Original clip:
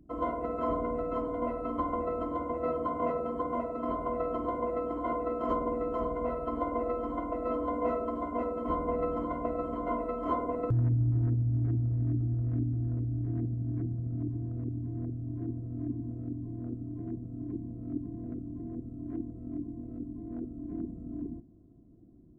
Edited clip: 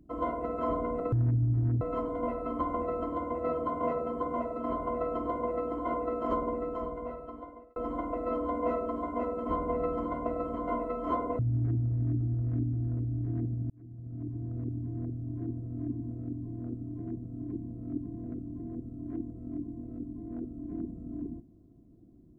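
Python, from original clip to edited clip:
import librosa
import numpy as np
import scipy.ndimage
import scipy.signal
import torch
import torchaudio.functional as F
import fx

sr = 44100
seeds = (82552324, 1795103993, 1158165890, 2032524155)

y = fx.edit(x, sr, fx.fade_out_span(start_s=5.55, length_s=1.4),
    fx.move(start_s=10.58, length_s=0.81, to_s=1.0),
    fx.fade_in_span(start_s=13.7, length_s=0.86), tone=tone)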